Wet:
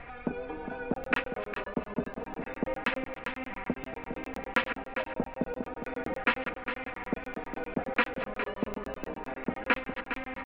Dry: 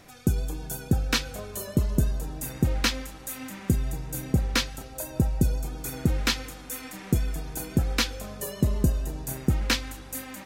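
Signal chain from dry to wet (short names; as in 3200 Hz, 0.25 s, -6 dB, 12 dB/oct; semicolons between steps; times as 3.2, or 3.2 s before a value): reverse delay 0.145 s, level -12 dB; comb 4.2 ms, depth 62%; soft clip -13 dBFS, distortion -18 dB; HPF 390 Hz 12 dB/oct; added noise brown -53 dBFS; steep low-pass 2500 Hz 36 dB/oct; on a send: echo 0.408 s -9.5 dB; on the sum: crackling interface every 0.10 s, samples 1024, zero, from 0.94; mismatched tape noise reduction encoder only; gain +3.5 dB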